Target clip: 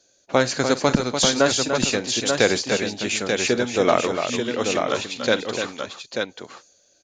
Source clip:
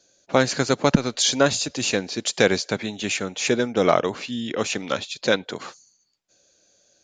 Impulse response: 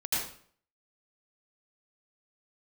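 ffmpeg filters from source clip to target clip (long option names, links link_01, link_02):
-filter_complex "[0:a]equalizer=frequency=170:width_type=o:width=0.56:gain=-5,asplit=2[link_01][link_02];[link_02]aecho=0:1:48|294|887:0.15|0.422|0.531[link_03];[link_01][link_03]amix=inputs=2:normalize=0"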